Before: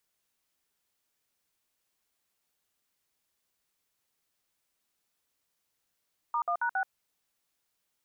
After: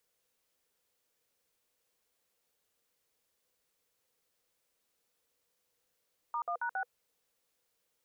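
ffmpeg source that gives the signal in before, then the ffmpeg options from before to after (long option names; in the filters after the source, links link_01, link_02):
-f lavfi -i "aevalsrc='0.0355*clip(min(mod(t,0.137),0.08-mod(t,0.137))/0.002,0,1)*(eq(floor(t/0.137),0)*(sin(2*PI*941*mod(t,0.137))+sin(2*PI*1209*mod(t,0.137)))+eq(floor(t/0.137),1)*(sin(2*PI*697*mod(t,0.137))+sin(2*PI*1209*mod(t,0.137)))+eq(floor(t/0.137),2)*(sin(2*PI*941*mod(t,0.137))+sin(2*PI*1477*mod(t,0.137)))+eq(floor(t/0.137),3)*(sin(2*PI*770*mod(t,0.137))+sin(2*PI*1477*mod(t,0.137))))':duration=0.548:sample_rate=44100"
-af "equalizer=frequency=490:width=4.2:gain=12,alimiter=level_in=4.5dB:limit=-24dB:level=0:latency=1:release=17,volume=-4.5dB"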